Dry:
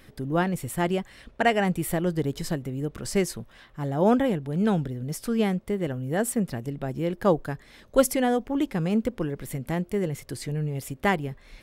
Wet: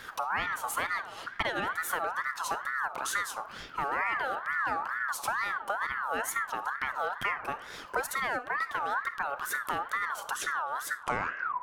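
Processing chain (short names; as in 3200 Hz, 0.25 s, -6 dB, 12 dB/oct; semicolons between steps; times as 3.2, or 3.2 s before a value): tape stop at the end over 0.80 s; in parallel at +0.5 dB: limiter -16.5 dBFS, peak gain reduction 11.5 dB; on the sum: compressor 5:1, threshold -31 dBFS, peak gain reduction 18.5 dB; digital reverb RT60 1.3 s, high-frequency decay 0.3×, pre-delay 5 ms, DRR 11.5 dB; ring modulator with a swept carrier 1300 Hz, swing 25%, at 2.2 Hz; gain +3 dB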